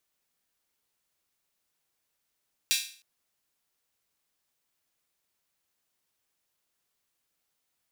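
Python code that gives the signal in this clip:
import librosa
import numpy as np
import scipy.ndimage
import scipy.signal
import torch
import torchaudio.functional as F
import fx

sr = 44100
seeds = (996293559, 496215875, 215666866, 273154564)

y = fx.drum_hat_open(sr, length_s=0.31, from_hz=3000.0, decay_s=0.44)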